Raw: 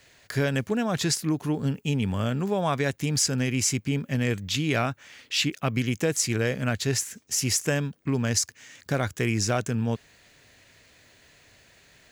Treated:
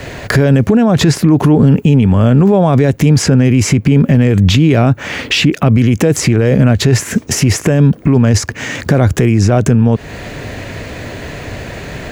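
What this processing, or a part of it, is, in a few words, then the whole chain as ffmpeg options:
mastering chain: -filter_complex "[0:a]equalizer=frequency=2500:width_type=o:width=0.77:gain=2,acrossover=split=640|3200[link_01][link_02][link_03];[link_01]acompressor=threshold=-25dB:ratio=4[link_04];[link_02]acompressor=threshold=-32dB:ratio=4[link_05];[link_03]acompressor=threshold=-32dB:ratio=4[link_06];[link_04][link_05][link_06]amix=inputs=3:normalize=0,acompressor=threshold=-36dB:ratio=2.5,tiltshelf=frequency=1500:gain=9,alimiter=level_in=29dB:limit=-1dB:release=50:level=0:latency=1,volume=-1dB"

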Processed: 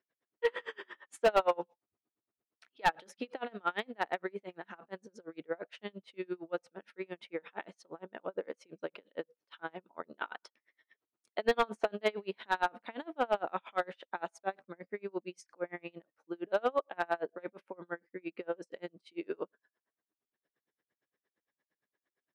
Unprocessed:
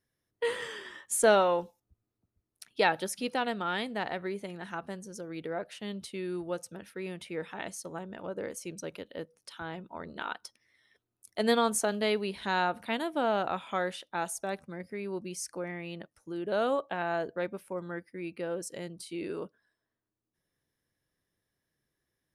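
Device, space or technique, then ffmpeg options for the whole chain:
helicopter radio: -af "highpass=320,lowpass=2600,aeval=exprs='val(0)*pow(10,-34*(0.5-0.5*cos(2*PI*8.7*n/s))/20)':channel_layout=same,asoftclip=type=hard:threshold=-24dB,volume=5dB"

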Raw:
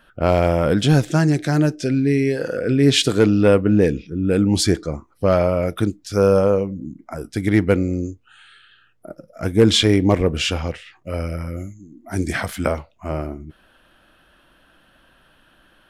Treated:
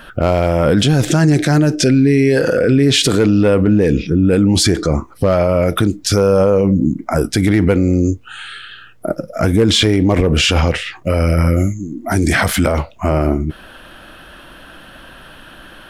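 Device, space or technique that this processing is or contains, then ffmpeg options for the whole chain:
loud club master: -af "acompressor=threshold=-17dB:ratio=2.5,asoftclip=type=hard:threshold=-10.5dB,alimiter=level_in=21dB:limit=-1dB:release=50:level=0:latency=1,volume=-4dB"

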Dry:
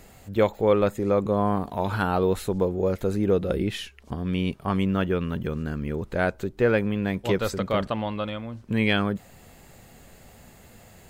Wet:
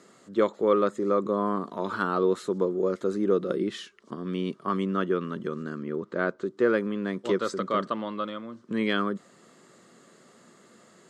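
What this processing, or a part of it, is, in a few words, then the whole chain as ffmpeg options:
television speaker: -filter_complex "[0:a]highpass=frequency=180:width=0.5412,highpass=frequency=180:width=1.3066,equalizer=frequency=360:width_type=q:width=4:gain=6,equalizer=frequency=790:width_type=q:width=4:gain=-10,equalizer=frequency=1200:width_type=q:width=4:gain=9,equalizer=frequency=2500:width_type=q:width=4:gain=-9,lowpass=frequency=8500:width=0.5412,lowpass=frequency=8500:width=1.3066,asettb=1/sr,asplit=3[link_01][link_02][link_03];[link_01]atrim=end=5.834[link_04];[link_02]atrim=start=5.83:end=6.44,asetpts=PTS-STARTPTS,afade=type=in:duration=0.004:curve=qsin,afade=type=out:start_time=0.606:duration=0.004:curve=qsin,aemphasis=mode=reproduction:type=50fm[link_05];[link_03]atrim=start=6.436[link_06];[link_04][link_05]acrossfade=duration=0.004:curve1=hsin:curve2=qsin[link_07];[link_07][link_06]acrossfade=duration=0.004:curve1=qsin:curve2=hsin,volume=-3dB"

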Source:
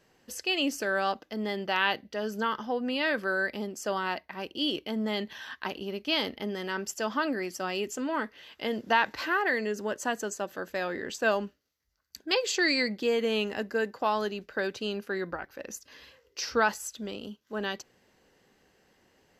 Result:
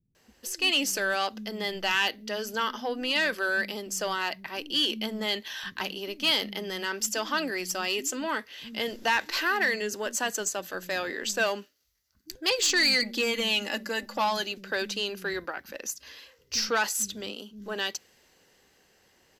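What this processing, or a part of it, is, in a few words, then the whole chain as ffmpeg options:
saturation between pre-emphasis and de-emphasis: -filter_complex "[0:a]asettb=1/sr,asplit=3[link_01][link_02][link_03];[link_01]atrim=end=12.844[link_04];[link_02]atrim=start=12.84:end=14.37,asetpts=PTS-STARTPTS,afade=type=in:duration=0.004:curve=qsin,afade=type=out:start_time=1.526:duration=0.004:curve=qsin,aecho=1:1:3.5:0.61,atrim=end_sample=67473[link_05];[link_03]atrim=start=14.366[link_06];[link_04][link_05]acrossfade=duration=0.004:curve1=hsin:curve2=qsin[link_07];[link_07][link_06]acrossfade=duration=0.004:curve1=qsin:curve2=hsin,highshelf=frequency=2900:gain=7.5,highshelf=frequency=5700:gain=10,asoftclip=type=tanh:threshold=-18.5dB,highshelf=frequency=5700:gain=-10,acrossover=split=210[link_08][link_09];[link_09]adelay=150[link_10];[link_08][link_10]amix=inputs=2:normalize=0,adynamicequalizer=threshold=0.0112:dfrequency=1800:dqfactor=0.7:tfrequency=1800:tqfactor=0.7:attack=5:release=100:ratio=0.375:range=2.5:mode=boostabove:tftype=highshelf"

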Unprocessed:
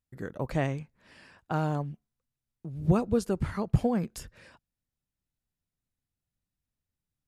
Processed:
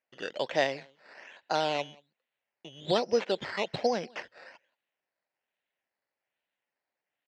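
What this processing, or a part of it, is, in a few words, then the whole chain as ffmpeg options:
circuit-bent sampling toy: -filter_complex "[0:a]asplit=2[link_01][link_02];[link_02]adelay=180.8,volume=-26dB,highshelf=frequency=4000:gain=-4.07[link_03];[link_01][link_03]amix=inputs=2:normalize=0,acrusher=samples=11:mix=1:aa=0.000001:lfo=1:lforange=6.6:lforate=1.2,highpass=520,equalizer=frequency=570:width_type=q:width=4:gain=4,equalizer=frequency=1200:width_type=q:width=4:gain=-8,equalizer=frequency=1900:width_type=q:width=4:gain=4,equalizer=frequency=2800:width_type=q:width=4:gain=4,lowpass=frequency=5100:width=0.5412,lowpass=frequency=5100:width=1.3066,volume=5dB"

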